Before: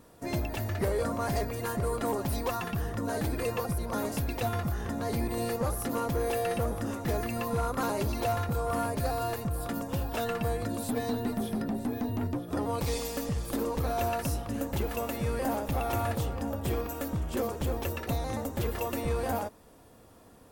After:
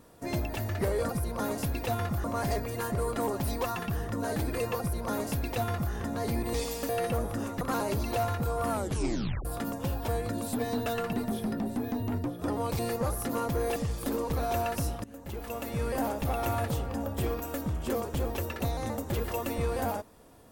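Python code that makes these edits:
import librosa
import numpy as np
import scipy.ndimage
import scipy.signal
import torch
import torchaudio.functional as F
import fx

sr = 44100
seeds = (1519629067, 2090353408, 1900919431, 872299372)

y = fx.edit(x, sr, fx.duplicate(start_s=3.63, length_s=1.15, to_s=1.09),
    fx.swap(start_s=5.39, length_s=0.97, other_s=12.88, other_length_s=0.35),
    fx.cut(start_s=7.08, length_s=0.62),
    fx.tape_stop(start_s=8.79, length_s=0.75),
    fx.move(start_s=10.17, length_s=0.27, to_s=11.22),
    fx.fade_in_from(start_s=14.51, length_s=0.84, floor_db=-19.5), tone=tone)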